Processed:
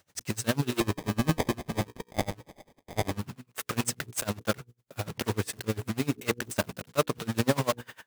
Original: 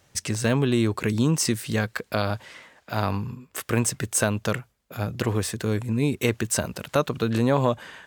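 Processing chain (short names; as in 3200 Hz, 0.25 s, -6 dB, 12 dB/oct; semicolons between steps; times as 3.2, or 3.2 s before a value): block floating point 3-bit; HPF 58 Hz; notches 60/120/180/240/300/360/420/480 Hz; 0.8–3.19 sample-rate reducer 1400 Hz, jitter 0%; dB-linear tremolo 10 Hz, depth 27 dB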